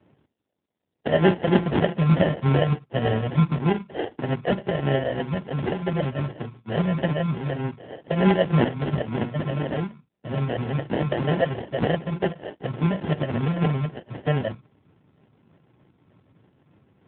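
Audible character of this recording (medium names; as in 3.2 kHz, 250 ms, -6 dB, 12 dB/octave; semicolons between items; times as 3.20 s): phasing stages 6, 3.3 Hz, lowest notch 350–1000 Hz; aliases and images of a low sample rate 1.2 kHz, jitter 0%; AMR-NB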